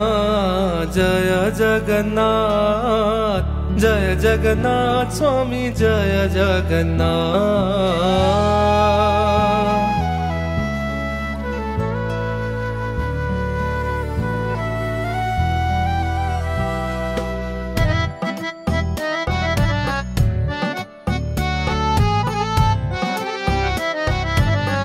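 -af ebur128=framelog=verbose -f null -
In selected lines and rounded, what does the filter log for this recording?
Integrated loudness:
  I:         -19.3 LUFS
  Threshold: -29.3 LUFS
Loudness range:
  LRA:         5.9 LU
  Threshold: -39.3 LUFS
  LRA low:   -22.8 LUFS
  LRA high:  -16.9 LUFS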